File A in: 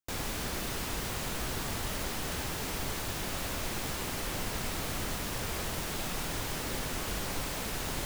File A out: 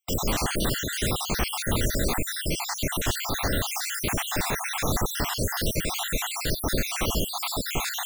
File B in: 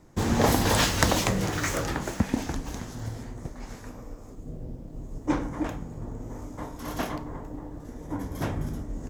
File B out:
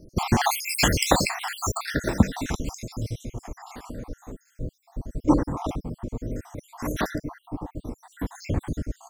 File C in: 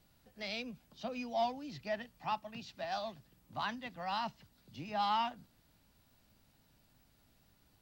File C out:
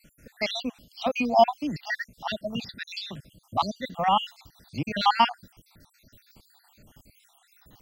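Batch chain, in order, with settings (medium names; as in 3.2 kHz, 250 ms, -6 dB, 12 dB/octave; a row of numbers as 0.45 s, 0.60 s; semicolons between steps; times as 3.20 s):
random holes in the spectrogram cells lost 66%; normalise loudness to -27 LUFS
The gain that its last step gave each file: +12.5 dB, +7.5 dB, +16.5 dB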